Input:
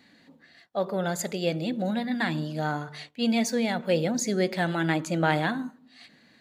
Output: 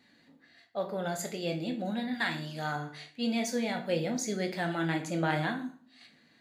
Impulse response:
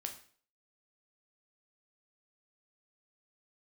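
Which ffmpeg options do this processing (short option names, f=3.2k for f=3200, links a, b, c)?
-filter_complex "[0:a]asettb=1/sr,asplit=3[a][b][c];[a]atrim=end=2.134[d];[b]atrim=start=2.13:end=2.76,asetpts=PTS-STARTPTS,afade=t=in:d=0.004:c=qsin,afade=t=out:st=0.626:d=0.004:c=qsin,tiltshelf=f=690:g=-5.5[e];[c]atrim=start=2.756[f];[d][e]acrossfade=d=0.004:c1=hsin:c2=qsin[g];[g][f]acrossfade=d=0.004:c1=qsin:c2=hsin[h];[1:a]atrim=start_sample=2205,asetrate=52920,aresample=44100[i];[h][i]afir=irnorm=-1:irlink=0,volume=-1.5dB"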